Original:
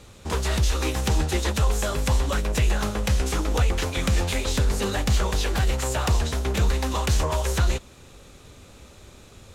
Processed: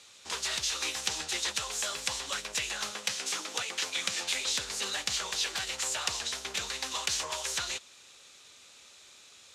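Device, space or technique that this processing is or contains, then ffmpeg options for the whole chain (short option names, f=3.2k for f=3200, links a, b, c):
piezo pickup straight into a mixer: -filter_complex "[0:a]lowpass=5.3k,aderivative,asettb=1/sr,asplit=3[a][b][c];[a]atrim=end=2.924[d];[b]atrim=start=2.92:end=4.33,asetpts=PTS-STARTPTS,afade=t=in:d=0.004:c=qsin,afade=t=out:st=1.406:d=0.004:c=qsin,highpass=f=110:w=0.5412,highpass=f=110:w=1.3066[e];[c]atrim=start=4.326[f];[d][e]acrossfade=d=0.004:c1=hsin:c2=qsin[g];[g][f]acrossfade=d=0.004:c1=qsin:c2=hsin,volume=7.5dB"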